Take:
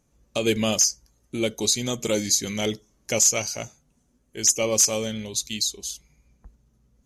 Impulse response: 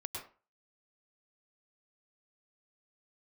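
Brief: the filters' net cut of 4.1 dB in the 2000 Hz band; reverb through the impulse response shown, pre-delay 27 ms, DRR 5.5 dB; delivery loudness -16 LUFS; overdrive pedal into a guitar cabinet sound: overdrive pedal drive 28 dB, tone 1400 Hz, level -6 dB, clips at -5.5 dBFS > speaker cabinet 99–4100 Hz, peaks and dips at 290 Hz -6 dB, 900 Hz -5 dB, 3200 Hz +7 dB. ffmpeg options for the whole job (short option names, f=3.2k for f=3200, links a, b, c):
-filter_complex "[0:a]equalizer=f=2k:t=o:g=-6.5,asplit=2[a][b];[1:a]atrim=start_sample=2205,adelay=27[c];[b][c]afir=irnorm=-1:irlink=0,volume=-5dB[d];[a][d]amix=inputs=2:normalize=0,asplit=2[e][f];[f]highpass=f=720:p=1,volume=28dB,asoftclip=type=tanh:threshold=-5.5dB[g];[e][g]amix=inputs=2:normalize=0,lowpass=f=1.4k:p=1,volume=-6dB,highpass=99,equalizer=f=290:t=q:w=4:g=-6,equalizer=f=900:t=q:w=4:g=-5,equalizer=f=3.2k:t=q:w=4:g=7,lowpass=f=4.1k:w=0.5412,lowpass=f=4.1k:w=1.3066,volume=4dB"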